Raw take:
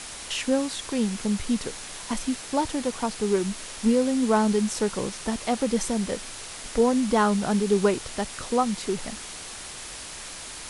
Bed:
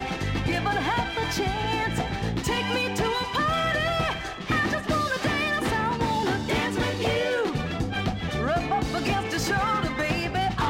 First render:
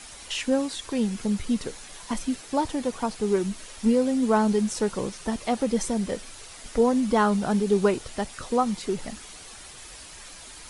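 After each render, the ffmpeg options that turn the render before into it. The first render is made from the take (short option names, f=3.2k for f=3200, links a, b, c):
-af "afftdn=nr=8:nf=-39"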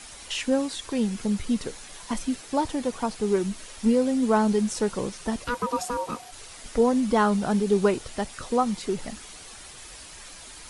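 -filter_complex "[0:a]asplit=3[a][b][c];[a]afade=t=out:st=5.44:d=0.02[d];[b]aeval=exprs='val(0)*sin(2*PI*730*n/s)':c=same,afade=t=in:st=5.44:d=0.02,afade=t=out:st=6.31:d=0.02[e];[c]afade=t=in:st=6.31:d=0.02[f];[d][e][f]amix=inputs=3:normalize=0"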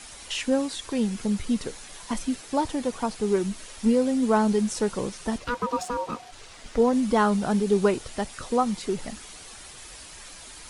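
-filter_complex "[0:a]asettb=1/sr,asplit=3[a][b][c];[a]atrim=end=5.384[d];[b]atrim=start=5.38:end=6.93,asetpts=PTS-STARTPTS,afade=t=in:d=0.004:c=qsin,afade=t=out:st=1.546:d=0.004:c=qsin,adynamicsmooth=sensitivity=5.5:basefreq=6.6k[e];[c]atrim=start=6.926[f];[d][e]acrossfade=d=0.004:c1=hsin:c2=qsin[g];[g][f]acrossfade=d=0.004:c1=qsin:c2=hsin"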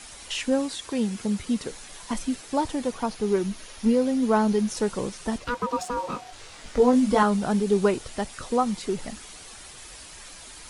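-filter_complex "[0:a]asettb=1/sr,asplit=3[a][b][c];[a]atrim=end=0.754[d];[b]atrim=start=0.75:end=1.71,asetpts=PTS-STARTPTS,afade=t=in:d=0.004:c=qsin,afade=t=out:st=0.956:d=0.004:c=qsin,highpass=f=79:p=1[e];[c]atrim=start=1.706[f];[d][e]acrossfade=d=0.004:c1=hsin:c2=qsin[g];[g][f]acrossfade=d=0.004:c1=qsin:c2=hsin,asettb=1/sr,asplit=3[h][i][j];[h]atrim=end=2.934[k];[i]atrim=start=2.93:end=4.77,asetpts=PTS-STARTPTS,afade=t=in:d=0.004:c=qsin,afade=t=out:st=1.836:d=0.004:c=qsin,equalizer=f=8k:w=7.5:g=-13[l];[j]atrim=start=4.766[m];[k][l]acrossfade=d=0.004:c1=hsin:c2=qsin[n];[n][m]acrossfade=d=0.004:c1=qsin:c2=hsin,asettb=1/sr,asplit=3[o][p][q];[o]atrim=end=5.954[r];[p]atrim=start=5.95:end=7.23,asetpts=PTS-STARTPTS,afade=t=in:d=0.004:c=qsin,afade=t=out:st=1.276:d=0.004:c=qsin,asplit=2[s][t];[t]adelay=20,volume=-3dB[u];[s][u]amix=inputs=2:normalize=0,atrim=end_sample=56448[v];[q]atrim=start=7.226[w];[r][v]acrossfade=d=0.004:c1=hsin:c2=qsin[x];[x][w]acrossfade=d=0.004:c1=qsin:c2=hsin"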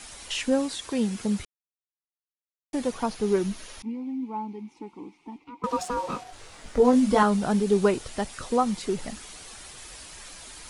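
-filter_complex "[0:a]asettb=1/sr,asplit=3[a][b][c];[a]atrim=end=3.824[d];[b]atrim=start=3.82:end=5.64,asetpts=PTS-STARTPTS,afade=t=in:d=0.004:c=qsin,afade=t=out:st=1.816:d=0.004:c=qsin,asplit=3[e][f][g];[e]bandpass=f=300:t=q:w=8,volume=0dB[h];[f]bandpass=f=870:t=q:w=8,volume=-6dB[i];[g]bandpass=f=2.24k:t=q:w=8,volume=-9dB[j];[h][i][j]amix=inputs=3:normalize=0[k];[c]atrim=start=5.636[l];[d][k]acrossfade=d=0.004:c1=hsin:c2=qsin[m];[m][l]acrossfade=d=0.004:c1=qsin:c2=hsin,asettb=1/sr,asplit=3[n][o][p];[n]atrim=end=6.234[q];[o]atrim=start=6.23:end=6.85,asetpts=PTS-STARTPTS,afade=t=in:d=0.004:c=qsin,afade=t=out:st=0.616:d=0.004:c=qsin,equalizer=f=4.1k:t=o:w=2.6:g=-4.5[r];[p]atrim=start=6.846[s];[q][r]acrossfade=d=0.004:c1=hsin:c2=qsin[t];[t][s]acrossfade=d=0.004:c1=qsin:c2=hsin,asplit=3[u][v][w];[u]atrim=end=1.45,asetpts=PTS-STARTPTS,afade=t=out:st=1.446:d=0.004:c=hsin[x];[v]atrim=start=1.45:end=2.73,asetpts=PTS-STARTPTS,volume=0[y];[w]atrim=start=2.73,asetpts=PTS-STARTPTS,afade=t=in:d=0.004:c=hsin[z];[x][y][z]concat=n=3:v=0:a=1"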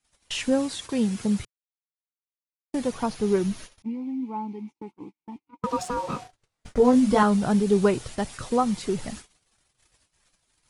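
-af "equalizer=f=120:t=o:w=1:g=8.5,agate=range=-36dB:threshold=-39dB:ratio=16:detection=peak"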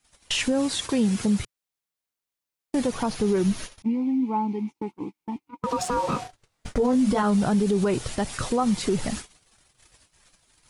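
-filter_complex "[0:a]asplit=2[a][b];[b]acompressor=threshold=-29dB:ratio=6,volume=3dB[c];[a][c]amix=inputs=2:normalize=0,alimiter=limit=-15dB:level=0:latency=1:release=54"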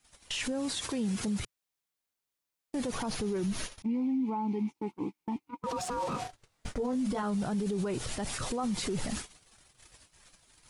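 -af "alimiter=level_in=1.5dB:limit=-24dB:level=0:latency=1:release=47,volume=-1.5dB"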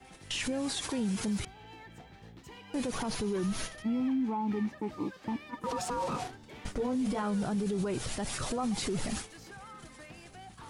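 -filter_complex "[1:a]volume=-24dB[a];[0:a][a]amix=inputs=2:normalize=0"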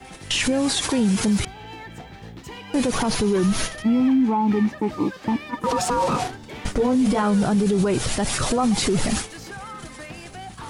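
-af "volume=12dB"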